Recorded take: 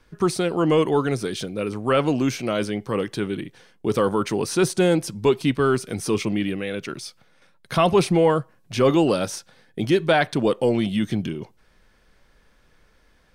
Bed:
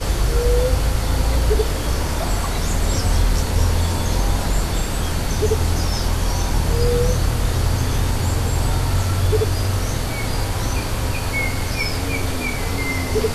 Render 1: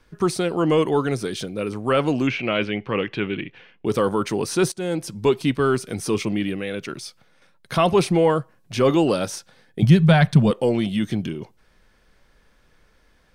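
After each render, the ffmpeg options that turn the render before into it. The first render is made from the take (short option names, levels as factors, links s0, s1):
-filter_complex "[0:a]asettb=1/sr,asplit=3[s0][s1][s2];[s0]atrim=end=2.274[s3];[s1]atrim=start=2.27:end=3.86,asetpts=PTS-STARTPTS,afade=t=in:d=0.004:c=qsin,afade=t=out:st=1.586:d=0.004:c=qsin,lowpass=f=2600:t=q:w=3.4[s4];[s2]atrim=start=3.856[s5];[s3][s4]acrossfade=d=0.004:c1=hsin:c2=qsin[s6];[s6][s5]acrossfade=d=0.004:c1=qsin:c2=hsin,asettb=1/sr,asplit=3[s7][s8][s9];[s7]atrim=end=9.824[s10];[s8]atrim=start=9.82:end=10.51,asetpts=PTS-STARTPTS,afade=t=in:d=0.004:c=qsin,afade=t=out:st=0.686:d=0.004:c=qsin,lowshelf=f=230:t=q:w=3:g=9.5[s11];[s9]atrim=start=10.506[s12];[s10][s11]acrossfade=d=0.004:c1=hsin:c2=qsin[s13];[s13][s12]acrossfade=d=0.004:c1=qsin:c2=hsin,asplit=2[s14][s15];[s14]atrim=end=4.72,asetpts=PTS-STARTPTS,afade=t=out:st=4.716:d=0.004:c=hsin:silence=0.158489[s16];[s15]atrim=start=4.72,asetpts=PTS-STARTPTS,afade=t=in:d=0.47:silence=0.158489[s17];[s16][s17]concat=n=2:v=0:a=1"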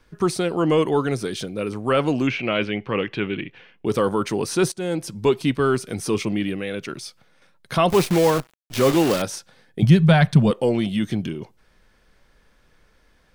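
-filter_complex "[0:a]asettb=1/sr,asplit=3[s0][s1][s2];[s0]atrim=end=7.904[s3];[s1]atrim=start=7.9:end=9.22,asetpts=PTS-STARTPTS,afade=t=in:d=0.004:c=qsin,afade=t=out:st=1.316:d=0.004:c=qsin,acrusher=bits=5:dc=4:mix=0:aa=0.000001[s4];[s2]atrim=start=9.216[s5];[s3][s4]acrossfade=d=0.004:c1=hsin:c2=qsin[s6];[s6][s5]acrossfade=d=0.004:c1=qsin:c2=hsin"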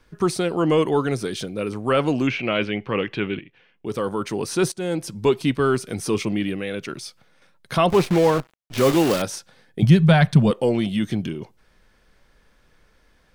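-filter_complex "[0:a]asettb=1/sr,asplit=3[s0][s1][s2];[s0]atrim=end=7.864[s3];[s1]atrim=start=7.86:end=8.78,asetpts=PTS-STARTPTS,afade=t=in:d=0.004:c=qsin,afade=t=out:st=0.916:d=0.004:c=qsin,aemphasis=mode=reproduction:type=cd[s4];[s2]atrim=start=8.776[s5];[s3][s4]acrossfade=d=0.004:c1=hsin:c2=qsin[s6];[s6][s5]acrossfade=d=0.004:c1=qsin:c2=hsin,asplit=2[s7][s8];[s7]atrim=end=3.39,asetpts=PTS-STARTPTS,afade=t=out:st=3.386:d=0.004:c=hsin:silence=0.223872[s9];[s8]atrim=start=3.39,asetpts=PTS-STARTPTS,afade=t=in:d=1.39:silence=0.223872[s10];[s9][s10]concat=n=2:v=0:a=1"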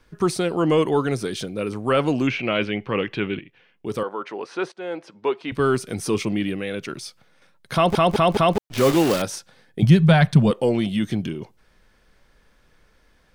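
-filter_complex "[0:a]asettb=1/sr,asplit=3[s0][s1][s2];[s0]atrim=end=4.034[s3];[s1]atrim=start=4.03:end=5.52,asetpts=PTS-STARTPTS,afade=t=in:d=0.004:c=qsin,afade=t=out:st=1.486:d=0.004:c=qsin,highpass=480,lowpass=2400[s4];[s2]atrim=start=5.516[s5];[s3][s4]acrossfade=d=0.004:c1=hsin:c2=qsin[s6];[s6][s5]acrossfade=d=0.004:c1=qsin:c2=hsin,asplit=5[s7][s8][s9][s10][s11];[s7]atrim=end=7.952[s12];[s8]atrim=start=7.738:end=7.952[s13];[s9]atrim=start=7.738:end=7.952[s14];[s10]atrim=start=7.738:end=7.952[s15];[s11]atrim=start=8.578[s16];[s12][s13]acrossfade=d=0.004:c1=hsin:c2=hsin[s17];[s17][s14]acrossfade=d=0.004:c1=hsin:c2=hsin[s18];[s18][s15]acrossfade=d=0.004:c1=hsin:c2=hsin[s19];[s19][s16]acrossfade=d=0.004:c1=hsin:c2=hsin"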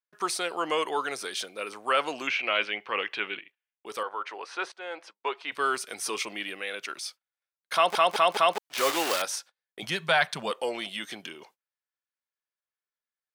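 -af "agate=range=0.0178:threshold=0.00708:ratio=16:detection=peak,highpass=830"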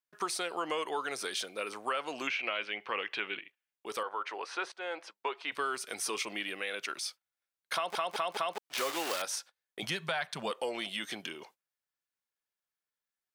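-af "alimiter=limit=0.2:level=0:latency=1:release=348,acompressor=threshold=0.0251:ratio=3"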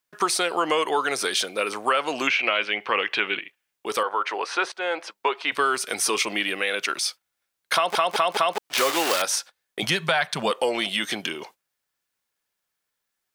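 -af "volume=3.76"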